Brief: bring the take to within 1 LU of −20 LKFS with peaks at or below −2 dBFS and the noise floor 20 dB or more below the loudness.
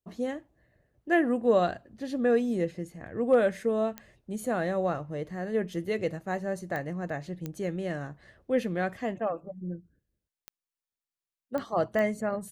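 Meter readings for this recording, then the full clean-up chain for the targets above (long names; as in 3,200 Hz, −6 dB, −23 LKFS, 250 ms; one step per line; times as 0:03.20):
number of clicks 6; integrated loudness −30.0 LKFS; sample peak −12.5 dBFS; target loudness −20.0 LKFS
→ click removal
level +10 dB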